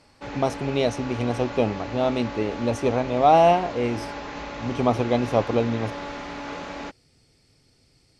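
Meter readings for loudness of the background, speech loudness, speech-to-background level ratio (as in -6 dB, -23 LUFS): -35.0 LUFS, -23.5 LUFS, 11.5 dB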